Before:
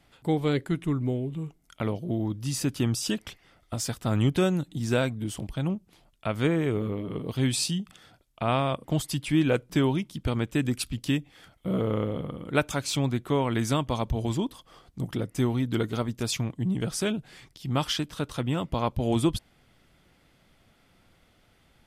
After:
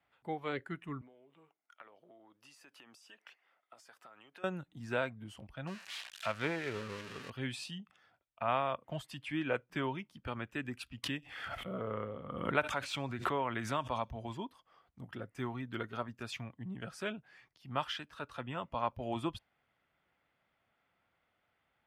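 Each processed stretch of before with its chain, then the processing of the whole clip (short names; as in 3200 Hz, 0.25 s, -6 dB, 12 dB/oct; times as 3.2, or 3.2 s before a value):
1.01–4.44 HPF 400 Hz + compressor 12:1, threshold -39 dBFS
5.67–7.3 switching spikes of -18 dBFS + LPF 5300 Hz + high shelf 3600 Hz +6.5 dB
11.03–14.1 thin delay 63 ms, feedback 64%, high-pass 4200 Hz, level -22 dB + backwards sustainer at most 35 dB/s
whole clip: spectral noise reduction 7 dB; HPF 59 Hz; three-band isolator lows -12 dB, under 590 Hz, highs -19 dB, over 2800 Hz; gain -3 dB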